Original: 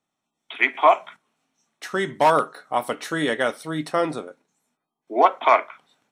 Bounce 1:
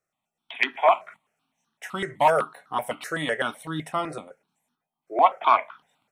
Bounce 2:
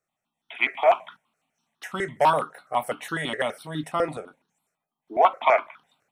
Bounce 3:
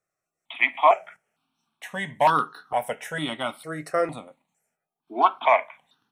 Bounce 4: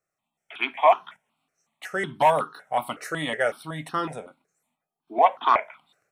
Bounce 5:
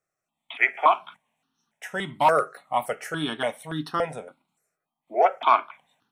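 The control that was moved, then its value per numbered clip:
step phaser, rate: 7.9, 12, 2.2, 5.4, 3.5 Hz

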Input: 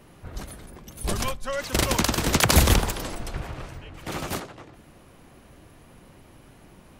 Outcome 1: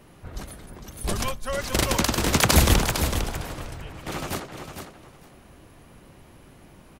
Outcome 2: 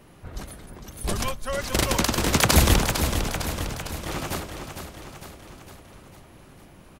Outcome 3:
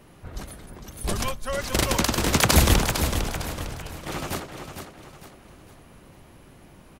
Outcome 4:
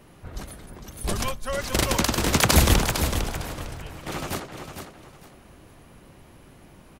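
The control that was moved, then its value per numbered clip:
feedback echo, feedback: 15, 59, 39, 24%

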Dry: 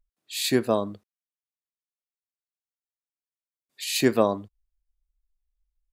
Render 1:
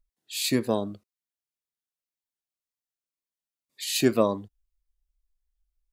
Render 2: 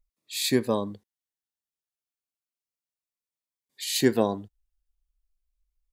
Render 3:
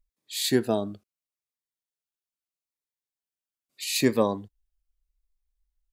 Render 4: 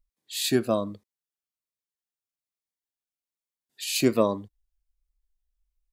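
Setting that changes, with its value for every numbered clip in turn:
cascading phaser, rate: 1.9, 0.34, 0.77, 1.2 Hz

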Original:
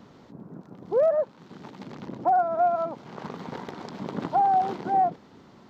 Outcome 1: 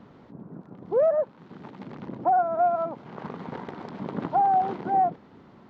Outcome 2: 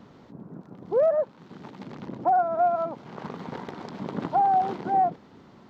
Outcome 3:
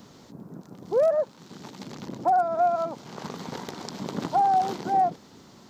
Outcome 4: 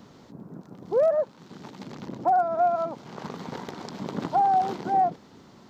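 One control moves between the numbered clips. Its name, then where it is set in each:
tone controls, treble: -14, -4, +15, +7 dB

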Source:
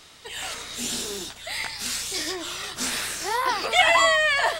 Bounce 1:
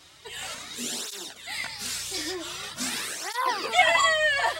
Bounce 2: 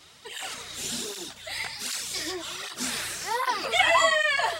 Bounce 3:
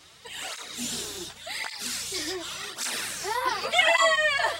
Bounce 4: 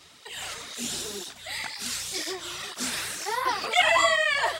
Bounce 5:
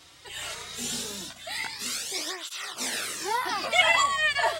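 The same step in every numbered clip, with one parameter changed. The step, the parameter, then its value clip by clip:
tape flanging out of phase, nulls at: 0.45, 1.3, 0.88, 2, 0.2 Hz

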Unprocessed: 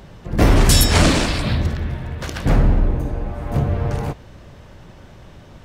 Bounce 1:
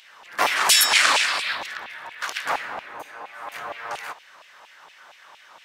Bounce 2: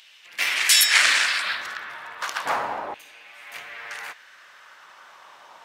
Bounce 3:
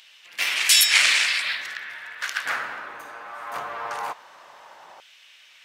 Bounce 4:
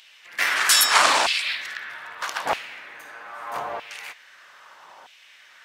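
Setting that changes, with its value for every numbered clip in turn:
LFO high-pass, rate: 4.3, 0.34, 0.2, 0.79 Hz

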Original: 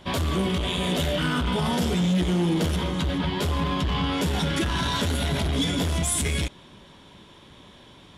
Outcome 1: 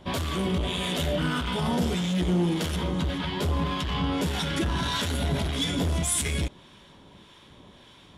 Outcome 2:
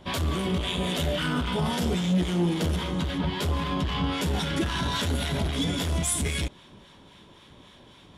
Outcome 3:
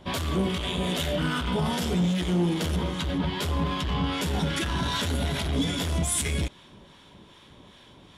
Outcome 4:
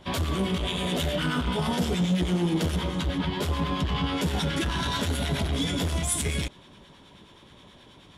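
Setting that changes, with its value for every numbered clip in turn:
harmonic tremolo, rate: 1.7, 3.7, 2.5, 9.4 Hz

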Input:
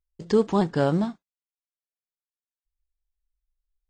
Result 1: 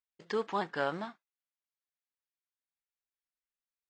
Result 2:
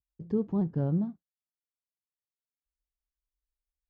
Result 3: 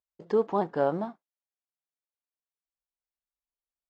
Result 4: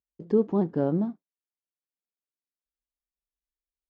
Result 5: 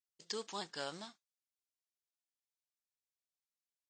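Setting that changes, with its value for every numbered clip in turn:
band-pass, frequency: 1800, 110, 730, 290, 5900 Hz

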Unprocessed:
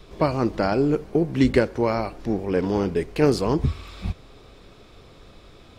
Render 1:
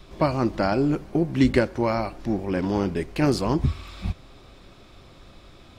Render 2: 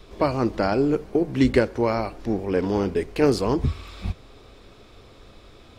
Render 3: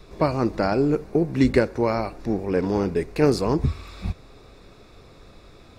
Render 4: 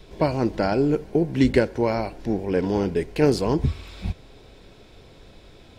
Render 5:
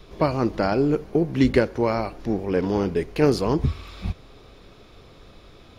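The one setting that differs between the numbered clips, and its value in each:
notch, frequency: 450, 160, 3100, 1200, 8000 Hz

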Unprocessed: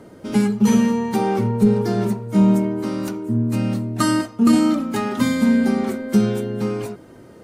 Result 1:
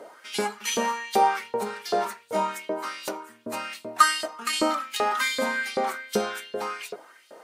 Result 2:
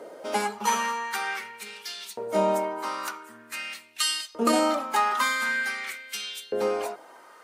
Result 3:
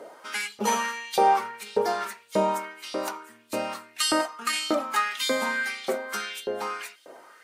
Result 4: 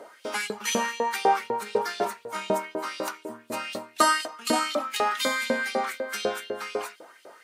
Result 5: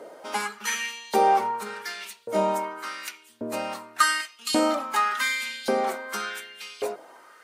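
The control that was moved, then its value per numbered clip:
LFO high-pass, rate: 2.6, 0.46, 1.7, 4, 0.88 Hz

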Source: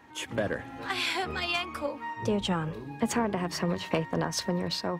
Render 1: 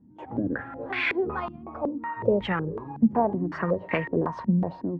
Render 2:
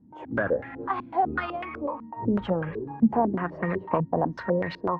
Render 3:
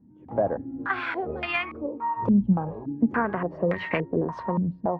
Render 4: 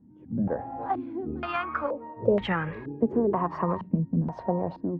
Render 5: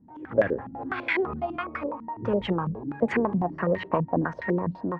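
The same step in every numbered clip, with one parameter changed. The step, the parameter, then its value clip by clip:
stepped low-pass, rate: 5.4, 8, 3.5, 2.1, 12 Hz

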